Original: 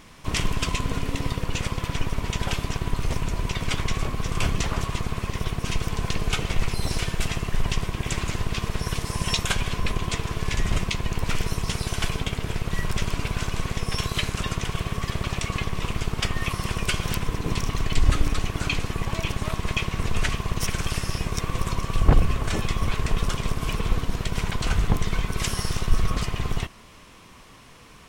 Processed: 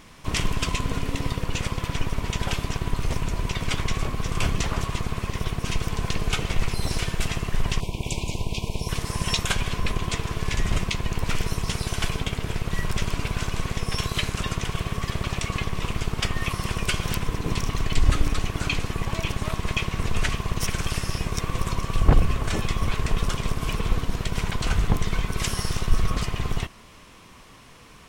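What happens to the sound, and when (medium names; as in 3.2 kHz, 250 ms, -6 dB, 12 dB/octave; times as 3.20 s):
7.80–8.89 s: Chebyshev band-stop 1–2.3 kHz, order 4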